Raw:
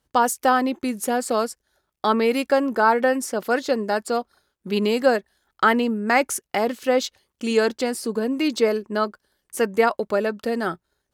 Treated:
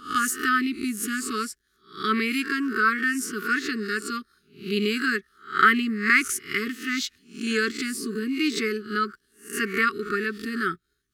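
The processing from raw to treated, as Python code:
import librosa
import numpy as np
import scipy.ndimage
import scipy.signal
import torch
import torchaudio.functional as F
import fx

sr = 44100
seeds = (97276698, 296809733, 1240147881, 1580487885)

y = fx.spec_swells(x, sr, rise_s=0.39)
y = fx.dynamic_eq(y, sr, hz=1900.0, q=1.3, threshold_db=-34.0, ratio=4.0, max_db=6)
y = fx.brickwall_bandstop(y, sr, low_hz=440.0, high_hz=1100.0)
y = y * librosa.db_to_amplitude(-3.0)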